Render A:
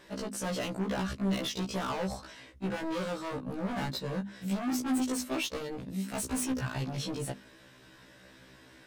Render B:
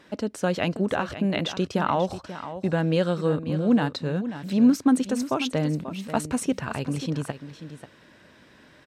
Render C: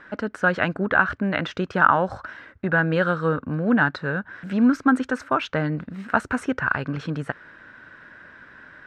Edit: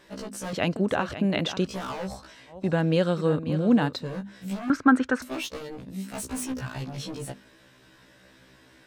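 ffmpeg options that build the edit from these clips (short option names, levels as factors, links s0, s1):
-filter_complex "[1:a]asplit=2[s0][s1];[0:a]asplit=4[s2][s3][s4][s5];[s2]atrim=end=0.532[s6];[s0]atrim=start=0.528:end=1.672[s7];[s3]atrim=start=1.668:end=2.7[s8];[s1]atrim=start=2.46:end=4.15[s9];[s4]atrim=start=3.91:end=4.702[s10];[2:a]atrim=start=4.698:end=5.222[s11];[s5]atrim=start=5.218[s12];[s6][s7]acrossfade=d=0.004:c1=hsin:c2=hsin[s13];[s13][s8]acrossfade=d=0.004:c1=hsin:c2=hsin[s14];[s14][s9]acrossfade=d=0.24:c1=tri:c2=tri[s15];[s15][s10]acrossfade=d=0.24:c1=tri:c2=tri[s16];[s16][s11]acrossfade=d=0.004:c1=hsin:c2=hsin[s17];[s17][s12]acrossfade=d=0.004:c1=hsin:c2=hsin"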